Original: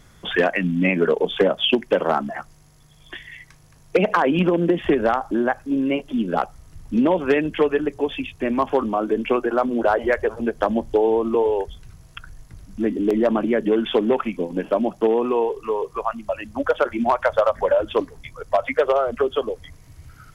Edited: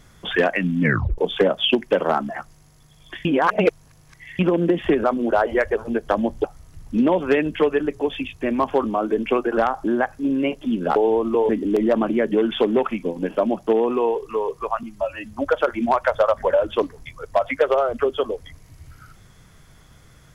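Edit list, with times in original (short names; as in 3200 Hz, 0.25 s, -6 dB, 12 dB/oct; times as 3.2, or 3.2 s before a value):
0.81 tape stop 0.37 s
3.25–4.39 reverse
5.04–6.43 swap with 9.56–10.96
11.49–12.83 cut
16.17–16.49 stretch 1.5×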